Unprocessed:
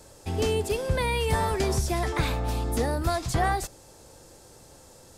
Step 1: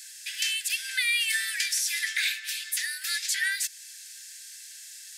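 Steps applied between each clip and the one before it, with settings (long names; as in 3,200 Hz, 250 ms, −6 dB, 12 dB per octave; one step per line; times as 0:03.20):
Butterworth high-pass 1,600 Hz 96 dB per octave
in parallel at −2 dB: downward compressor, threshold −43 dBFS, peak gain reduction 12 dB
on the sum: level +6 dB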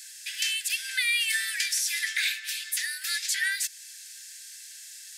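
no processing that can be heard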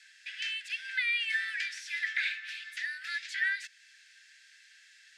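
low-pass filter 2,200 Hz 12 dB per octave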